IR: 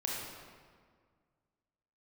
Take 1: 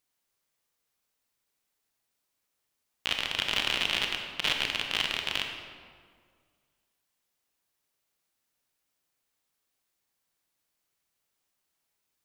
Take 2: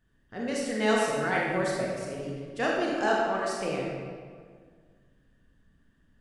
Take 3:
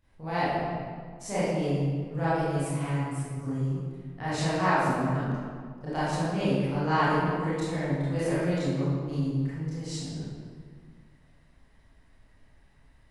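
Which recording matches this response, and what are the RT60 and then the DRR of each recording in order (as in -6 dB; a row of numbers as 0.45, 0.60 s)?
2; 1.8, 1.8, 1.8 s; 3.0, -3.5, -13.0 dB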